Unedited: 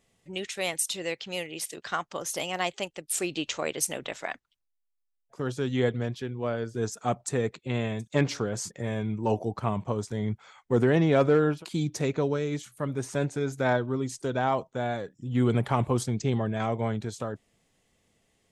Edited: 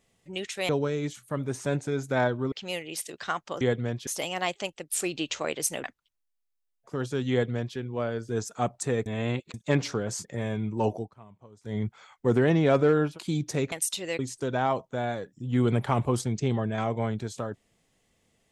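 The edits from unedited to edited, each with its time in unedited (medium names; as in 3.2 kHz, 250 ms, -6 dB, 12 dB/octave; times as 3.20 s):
0.69–1.16 s: swap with 12.18–14.01 s
4.02–4.30 s: delete
5.77–6.23 s: copy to 2.25 s
7.52–8.00 s: reverse
9.41–10.22 s: dip -22 dB, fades 0.16 s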